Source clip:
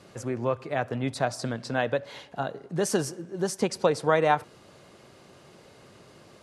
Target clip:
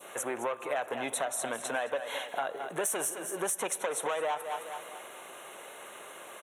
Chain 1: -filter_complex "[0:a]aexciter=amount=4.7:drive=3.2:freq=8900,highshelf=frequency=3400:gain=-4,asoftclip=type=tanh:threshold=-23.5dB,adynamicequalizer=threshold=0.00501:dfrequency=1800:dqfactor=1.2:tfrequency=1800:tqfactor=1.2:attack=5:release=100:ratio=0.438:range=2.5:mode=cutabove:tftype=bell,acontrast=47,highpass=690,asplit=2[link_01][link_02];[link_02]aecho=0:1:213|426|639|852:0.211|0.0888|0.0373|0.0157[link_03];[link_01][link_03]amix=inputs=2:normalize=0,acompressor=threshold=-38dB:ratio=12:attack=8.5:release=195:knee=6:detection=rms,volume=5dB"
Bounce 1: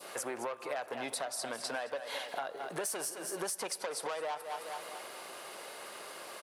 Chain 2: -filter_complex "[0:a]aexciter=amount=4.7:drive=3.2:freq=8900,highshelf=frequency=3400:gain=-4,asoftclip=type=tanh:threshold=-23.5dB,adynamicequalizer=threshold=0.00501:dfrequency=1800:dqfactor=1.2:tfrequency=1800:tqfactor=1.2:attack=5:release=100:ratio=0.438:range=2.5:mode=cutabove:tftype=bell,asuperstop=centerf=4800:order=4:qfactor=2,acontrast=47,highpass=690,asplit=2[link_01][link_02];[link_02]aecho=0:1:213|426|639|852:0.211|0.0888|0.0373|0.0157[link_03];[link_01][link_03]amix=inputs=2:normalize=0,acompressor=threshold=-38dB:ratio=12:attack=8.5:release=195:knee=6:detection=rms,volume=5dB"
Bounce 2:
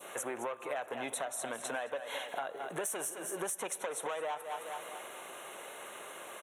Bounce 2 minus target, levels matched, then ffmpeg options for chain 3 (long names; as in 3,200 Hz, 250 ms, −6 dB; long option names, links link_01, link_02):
downward compressor: peak gain reduction +5.5 dB
-filter_complex "[0:a]aexciter=amount=4.7:drive=3.2:freq=8900,highshelf=frequency=3400:gain=-4,asoftclip=type=tanh:threshold=-23.5dB,adynamicequalizer=threshold=0.00501:dfrequency=1800:dqfactor=1.2:tfrequency=1800:tqfactor=1.2:attack=5:release=100:ratio=0.438:range=2.5:mode=cutabove:tftype=bell,asuperstop=centerf=4800:order=4:qfactor=2,acontrast=47,highpass=690,asplit=2[link_01][link_02];[link_02]aecho=0:1:213|426|639|852:0.211|0.0888|0.0373|0.0157[link_03];[link_01][link_03]amix=inputs=2:normalize=0,acompressor=threshold=-32dB:ratio=12:attack=8.5:release=195:knee=6:detection=rms,volume=5dB"